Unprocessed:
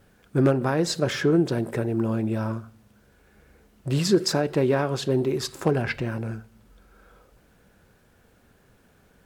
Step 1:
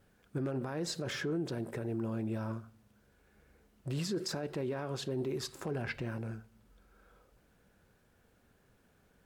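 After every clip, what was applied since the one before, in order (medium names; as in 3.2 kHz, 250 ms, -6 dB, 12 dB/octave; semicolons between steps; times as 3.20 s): peak limiter -18.5 dBFS, peak gain reduction 9 dB; trim -9 dB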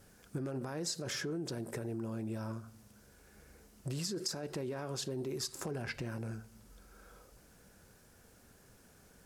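high-order bell 7.8 kHz +9 dB; compression 3:1, threshold -44 dBFS, peak gain reduction 13 dB; trim +5.5 dB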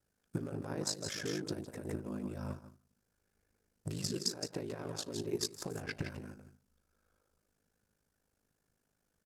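delay 165 ms -5 dB; ring modulator 26 Hz; upward expansion 2.5:1, over -53 dBFS; trim +7.5 dB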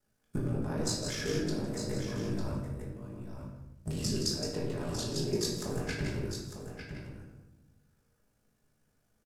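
octave divider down 1 oct, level -3 dB; delay 901 ms -8.5 dB; simulated room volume 290 m³, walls mixed, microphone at 1.4 m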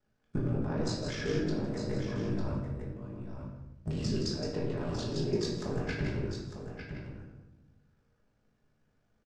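distance through air 140 m; trim +1.5 dB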